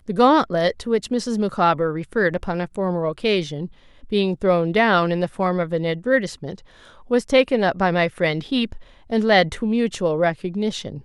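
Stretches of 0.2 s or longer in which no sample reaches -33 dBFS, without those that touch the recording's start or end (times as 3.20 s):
3.67–4.04 s
6.58–7.11 s
8.77–9.10 s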